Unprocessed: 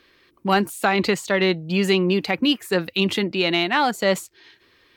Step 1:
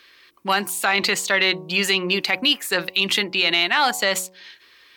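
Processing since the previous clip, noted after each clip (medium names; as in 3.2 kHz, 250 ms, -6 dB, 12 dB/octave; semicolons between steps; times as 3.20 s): tilt shelf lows -8.5 dB, about 660 Hz; de-hum 92.89 Hz, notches 12; peak limiter -7 dBFS, peak gain reduction 6 dB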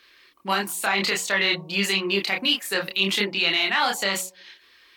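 chorus voices 6, 1.3 Hz, delay 28 ms, depth 3.2 ms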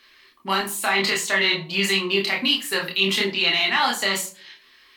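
reverberation RT60 0.35 s, pre-delay 3 ms, DRR 3.5 dB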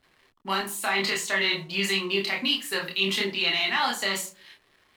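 hysteresis with a dead band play -46 dBFS; trim -4.5 dB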